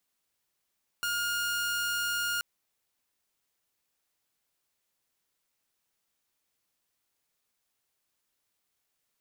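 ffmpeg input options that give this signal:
-f lavfi -i "aevalsrc='0.0501*(2*mod(1420*t,1)-1)':d=1.38:s=44100"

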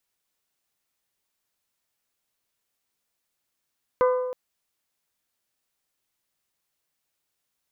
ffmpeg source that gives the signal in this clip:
-f lavfi -i "aevalsrc='0.158*pow(10,-3*t/1.37)*sin(2*PI*504*t)+0.0794*pow(10,-3*t/0.843)*sin(2*PI*1008*t)+0.0398*pow(10,-3*t/0.742)*sin(2*PI*1209.6*t)+0.02*pow(10,-3*t/0.635)*sin(2*PI*1512*t)+0.01*pow(10,-3*t/0.519)*sin(2*PI*2016*t)':d=0.32:s=44100"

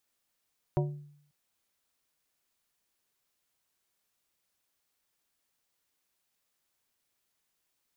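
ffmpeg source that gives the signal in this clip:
-f lavfi -i "aevalsrc='0.0668*pow(10,-3*t/0.68)*sin(2*PI*146*t)+0.0447*pow(10,-3*t/0.358)*sin(2*PI*365*t)+0.0299*pow(10,-3*t/0.258)*sin(2*PI*584*t)+0.02*pow(10,-3*t/0.22)*sin(2*PI*730*t)+0.0133*pow(10,-3*t/0.183)*sin(2*PI*949*t)':d=0.54:s=44100"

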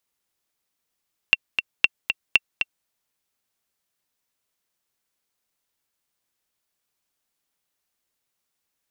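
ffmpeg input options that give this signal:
-f lavfi -i "aevalsrc='pow(10,(-1-7*gte(mod(t,2*60/234),60/234))/20)*sin(2*PI*2720*mod(t,60/234))*exp(-6.91*mod(t,60/234)/0.03)':d=1.53:s=44100"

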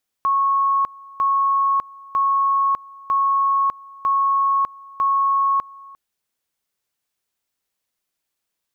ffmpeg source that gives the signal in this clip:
-f lavfi -i "aevalsrc='pow(10,(-15-23*gte(mod(t,0.95),0.6))/20)*sin(2*PI*1100*t)':d=5.7:s=44100"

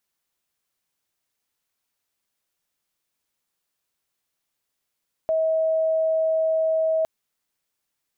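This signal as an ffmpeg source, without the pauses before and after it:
-f lavfi -i "sine=f=641:d=1.76:r=44100,volume=-0.44dB"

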